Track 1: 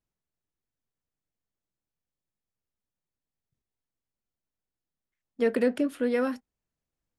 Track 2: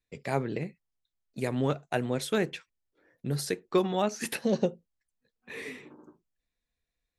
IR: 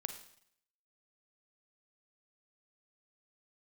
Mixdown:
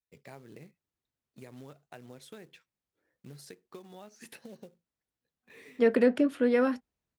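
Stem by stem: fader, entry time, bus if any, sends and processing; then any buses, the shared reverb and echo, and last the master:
+1.5 dB, 0.40 s, no send, high-shelf EQ 7,200 Hz −10.5 dB
−13.0 dB, 0.00 s, no send, downward compressor 10 to 1, threshold −31 dBFS, peak gain reduction 12 dB; floating-point word with a short mantissa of 2 bits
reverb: not used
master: high-pass filter 41 Hz

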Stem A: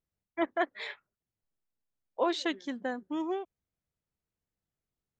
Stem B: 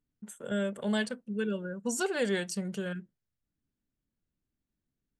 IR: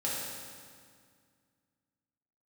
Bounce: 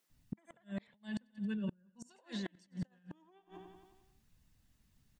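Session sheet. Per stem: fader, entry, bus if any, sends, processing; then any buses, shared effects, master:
0.0 dB, 0.00 s, no send, echo send −18.5 dB, high-pass filter 200 Hz 24 dB per octave; reverb reduction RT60 0.55 s
−3.5 dB, 0.10 s, no send, echo send −15 dB, low-pass filter 6,300 Hz 12 dB per octave; bass and treble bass +11 dB, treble +1 dB; comb filter 1.1 ms, depth 58%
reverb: not used
echo: repeating echo 89 ms, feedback 58%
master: compressor whose output falls as the input rises −35 dBFS, ratio −1; gate with flip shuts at −28 dBFS, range −35 dB; one half of a high-frequency compander encoder only

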